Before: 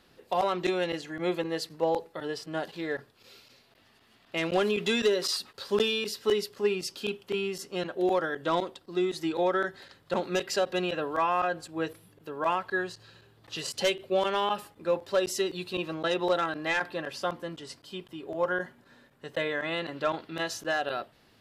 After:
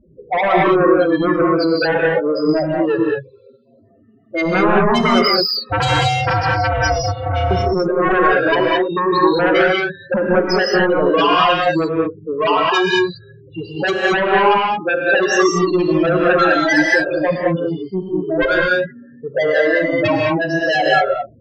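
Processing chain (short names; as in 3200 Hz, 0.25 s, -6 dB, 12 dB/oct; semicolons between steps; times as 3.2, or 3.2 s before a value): loudest bins only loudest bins 4; dynamic EQ 180 Hz, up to +5 dB, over -46 dBFS, Q 1.4; 5.69–7.51 ring modulator 310 Hz; low-pass opened by the level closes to 570 Hz, open at -29 dBFS; sine folder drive 12 dB, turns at -16 dBFS; non-linear reverb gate 0.24 s rising, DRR -2 dB; gain +2.5 dB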